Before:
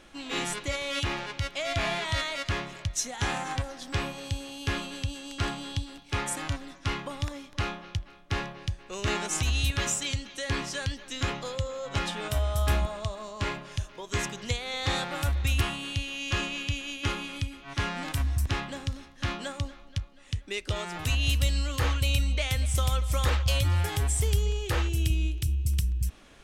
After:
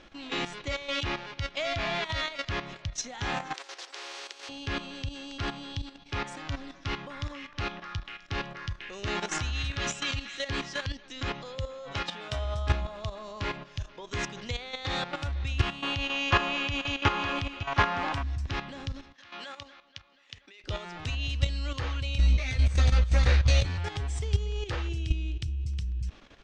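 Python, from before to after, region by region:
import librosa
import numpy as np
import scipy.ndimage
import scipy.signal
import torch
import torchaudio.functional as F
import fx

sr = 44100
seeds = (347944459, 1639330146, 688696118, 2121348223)

y = fx.chain(x, sr, fx.steep_highpass(hz=370.0, slope=96),
    fx.spectral_comp(ratio=4.0), at=(3.54, 4.49))
y = fx.chain(y, sr, fx.high_shelf(hz=12000.0, db=4.0),
    fx.notch(hz=1000.0, q=21.0),
    fx.echo_stepped(ms=246, hz=1400.0, octaves=0.7, feedback_pct=70, wet_db=-3), at=(6.72, 10.86))
y = fx.chain(y, sr, fx.highpass(hz=82.0, slope=6),
    fx.peak_eq(hz=220.0, db=-4.0, octaves=2.8), at=(11.92, 12.45))
y = fx.chain(y, sr, fx.peak_eq(hz=910.0, db=13.0, octaves=2.2),
    fx.echo_single(ms=917, db=-8.5), at=(15.82, 18.23))
y = fx.chain(y, sr, fx.highpass(hz=1300.0, slope=6),
    fx.high_shelf(hz=7300.0, db=-9.5),
    fx.over_compress(threshold_db=-43.0, ratio=-1.0), at=(19.13, 20.64))
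y = fx.chain(y, sr, fx.lower_of_two(delay_ms=0.48),
    fx.doubler(ms=16.0, db=-2.5), at=(22.18, 23.78))
y = scipy.signal.sosfilt(scipy.signal.butter(4, 5800.0, 'lowpass', fs=sr, output='sos'), y)
y = fx.level_steps(y, sr, step_db=11)
y = y * 10.0 ** (2.5 / 20.0)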